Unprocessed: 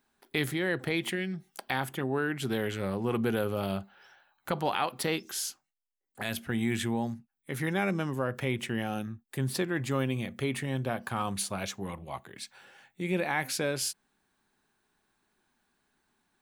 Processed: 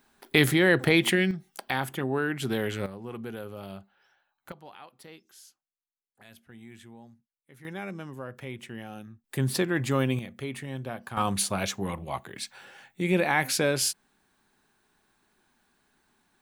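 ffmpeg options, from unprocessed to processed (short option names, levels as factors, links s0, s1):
-af "asetnsamples=n=441:p=0,asendcmd='1.31 volume volume 2dB;2.86 volume volume -9dB;4.52 volume volume -18.5dB;7.65 volume volume -8dB;9.24 volume volume 4dB;10.19 volume volume -4dB;11.17 volume volume 5.5dB',volume=2.82"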